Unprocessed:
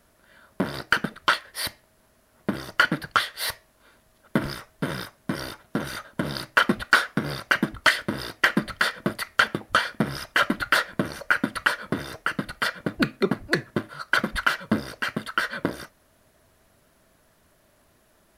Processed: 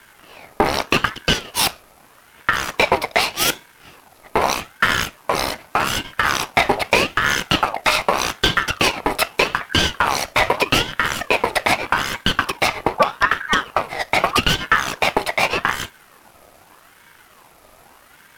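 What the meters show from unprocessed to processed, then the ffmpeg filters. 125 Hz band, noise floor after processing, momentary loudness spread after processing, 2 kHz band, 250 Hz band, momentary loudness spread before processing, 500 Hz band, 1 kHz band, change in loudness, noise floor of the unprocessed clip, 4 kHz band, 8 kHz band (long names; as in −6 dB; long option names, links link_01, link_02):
+3.5 dB, −51 dBFS, 5 LU, +4.5 dB, +0.5 dB, 10 LU, +9.5 dB, +8.5 dB, +6.5 dB, −62 dBFS, +9.0 dB, +12.0 dB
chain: -af "aeval=exprs='if(lt(val(0),0),0.447*val(0),val(0))':channel_layout=same,alimiter=level_in=17.5dB:limit=-1dB:release=50:level=0:latency=1,aeval=exprs='val(0)*sin(2*PI*1100*n/s+1100*0.45/0.82*sin(2*PI*0.82*n/s))':channel_layout=same"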